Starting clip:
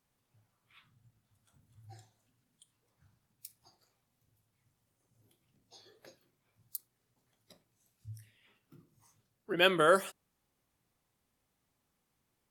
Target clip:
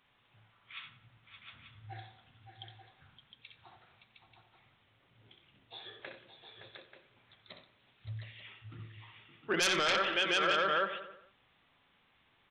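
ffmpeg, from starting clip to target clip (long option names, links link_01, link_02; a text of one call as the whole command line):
ffmpeg -i in.wav -filter_complex "[0:a]aresample=8000,aresample=44100,asplit=2[link_01][link_02];[link_02]aecho=0:1:64|567|576|711|886:0.447|0.282|0.141|0.447|0.266[link_03];[link_01][link_03]amix=inputs=2:normalize=0,aeval=exprs='0.251*sin(PI/2*3.16*val(0)/0.251)':channel_layout=same,tiltshelf=frequency=890:gain=-7.5,asplit=2[link_04][link_05];[link_05]adelay=90,lowpass=frequency=3100:poles=1,volume=-14dB,asplit=2[link_06][link_07];[link_07]adelay=90,lowpass=frequency=3100:poles=1,volume=0.52,asplit=2[link_08][link_09];[link_09]adelay=90,lowpass=frequency=3100:poles=1,volume=0.52,asplit=2[link_10][link_11];[link_11]adelay=90,lowpass=frequency=3100:poles=1,volume=0.52,asplit=2[link_12][link_13];[link_13]adelay=90,lowpass=frequency=3100:poles=1,volume=0.52[link_14];[link_06][link_08][link_10][link_12][link_14]amix=inputs=5:normalize=0[link_15];[link_04][link_15]amix=inputs=2:normalize=0,acompressor=threshold=-29dB:ratio=1.5,alimiter=limit=-16.5dB:level=0:latency=1:release=50,volume=-3.5dB" out.wav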